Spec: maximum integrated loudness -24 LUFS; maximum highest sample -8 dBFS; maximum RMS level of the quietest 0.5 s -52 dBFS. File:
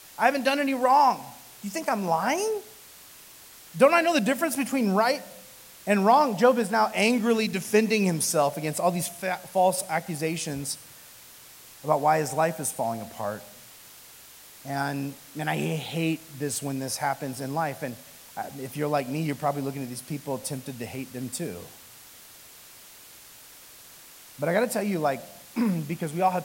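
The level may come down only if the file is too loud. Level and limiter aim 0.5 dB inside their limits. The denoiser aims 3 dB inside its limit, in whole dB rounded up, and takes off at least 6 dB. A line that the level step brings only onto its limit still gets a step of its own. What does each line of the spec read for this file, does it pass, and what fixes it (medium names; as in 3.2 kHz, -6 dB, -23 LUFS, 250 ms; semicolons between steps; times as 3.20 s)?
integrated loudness -26.0 LUFS: pass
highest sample -5.5 dBFS: fail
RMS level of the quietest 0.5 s -49 dBFS: fail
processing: noise reduction 6 dB, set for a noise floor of -49 dBFS; peak limiter -8.5 dBFS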